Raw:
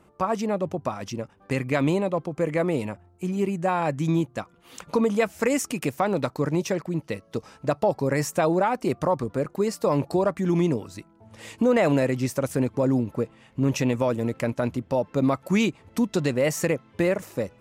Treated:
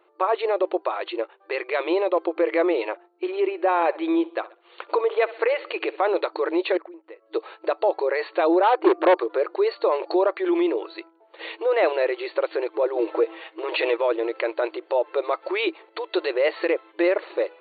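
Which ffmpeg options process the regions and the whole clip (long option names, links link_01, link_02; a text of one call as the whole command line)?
ffmpeg -i in.wav -filter_complex "[0:a]asettb=1/sr,asplit=3[link_01][link_02][link_03];[link_01]atrim=end=3.404[link_04];[link_02]atrim=start=3.4:end=6.09,asetpts=PTS-STARTPTS,afade=type=in:duration=0.004:curve=qsin,afade=type=out:start_time=2.686:duration=0.004:curve=qsin,highshelf=frequency=5700:gain=-12,aecho=1:1:65|130|195:0.0841|0.0362|0.0156,atrim=end_sample=118629[link_05];[link_03]atrim=start=6.086[link_06];[link_04][link_05]acrossfade=duration=0.004:curve1=hsin:curve2=qsin[link_07];[link_07][link_06]acrossfade=duration=0.004:curve1=qsin:curve2=hsin,asettb=1/sr,asplit=3[link_08][link_09][link_10];[link_08]atrim=end=6.774[link_11];[link_09]atrim=start=6.77:end=7.26,asetpts=PTS-STARTPTS,afade=type=in:duration=0.004:curve=qsin,afade=type=out:start_time=0.486:duration=0.004:curve=qsin,lowpass=2000,acompressor=threshold=-41dB:ratio=20:attack=3.2:release=140:knee=1:detection=peak[link_12];[link_10]atrim=start=7.256[link_13];[link_11][link_12]acrossfade=duration=0.004:curve1=hsin:curve2=qsin[link_14];[link_14][link_13]acrossfade=duration=0.004:curve1=qsin:curve2=hsin,asettb=1/sr,asplit=3[link_15][link_16][link_17];[link_15]atrim=end=8.634[link_18];[link_16]atrim=start=8.63:end=9.17,asetpts=PTS-STARTPTS,afade=type=in:duration=0.004:curve=qsin,afade=type=out:start_time=0.536:duration=0.004:curve=qsin,lowpass=2300,equalizer=frequency=300:width_type=o:width=1:gain=8.5,volume=18.5dB,asoftclip=hard,volume=-18.5dB[link_19];[link_17]atrim=start=9.166[link_20];[link_18][link_19]acrossfade=duration=0.004:curve1=hsin:curve2=qsin[link_21];[link_21][link_20]acrossfade=duration=0.004:curve1=qsin:curve2=hsin,asettb=1/sr,asplit=3[link_22][link_23][link_24];[link_22]atrim=end=12.964[link_25];[link_23]atrim=start=12.96:end=13.97,asetpts=PTS-STARTPTS,afade=type=in:duration=0.004:curve=qsin,afade=type=out:start_time=1.006:duration=0.004:curve=qsin,highpass=240,aecho=1:1:6.3:0.49,atrim=end_sample=44541,acontrast=58[link_26];[link_24]atrim=start=13.966[link_27];[link_25][link_26]acrossfade=duration=0.004:curve1=hsin:curve2=qsin[link_28];[link_28][link_27]acrossfade=duration=0.004:curve1=qsin:curve2=hsin,alimiter=limit=-19dB:level=0:latency=1:release=69,agate=range=-9dB:threshold=-46dB:ratio=16:detection=peak,afftfilt=real='re*between(b*sr/4096,320,4500)':imag='im*between(b*sr/4096,320,4500)':win_size=4096:overlap=0.75,volume=8dB" out.wav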